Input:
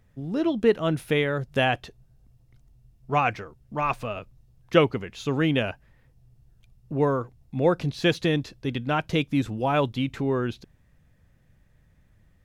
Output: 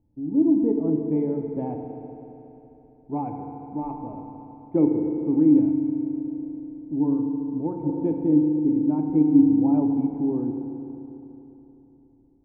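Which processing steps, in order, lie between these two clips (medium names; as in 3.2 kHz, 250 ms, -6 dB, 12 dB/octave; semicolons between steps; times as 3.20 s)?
FDN reverb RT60 3.4 s, high-frequency decay 0.95×, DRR 2.5 dB; 5.59–7.84 s: dynamic bell 510 Hz, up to -7 dB, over -34 dBFS, Q 1.1; cascade formant filter u; trim +6 dB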